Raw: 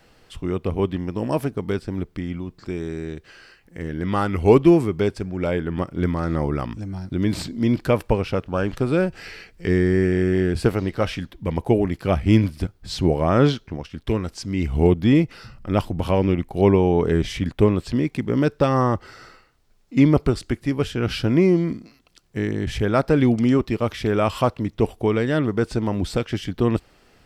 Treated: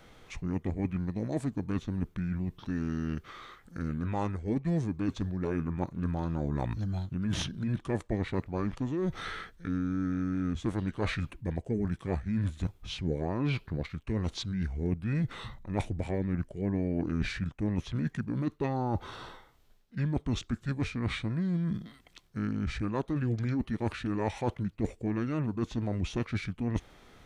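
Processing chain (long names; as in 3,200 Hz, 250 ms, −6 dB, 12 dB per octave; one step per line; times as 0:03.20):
reversed playback
downward compressor 6 to 1, threshold −28 dBFS, peak gain reduction 18.5 dB
reversed playback
formants moved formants −5 semitones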